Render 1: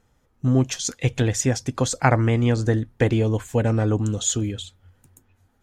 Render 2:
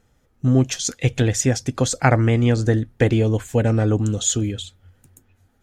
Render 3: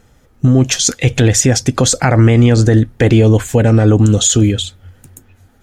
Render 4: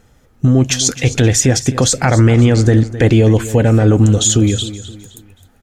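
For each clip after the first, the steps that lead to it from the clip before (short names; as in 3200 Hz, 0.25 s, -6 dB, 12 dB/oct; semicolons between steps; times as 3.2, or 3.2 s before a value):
bell 1000 Hz -5.5 dB 0.44 oct; gain +2.5 dB
maximiser +13 dB; gain -1 dB
feedback echo 0.261 s, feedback 37%, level -15 dB; gain -1 dB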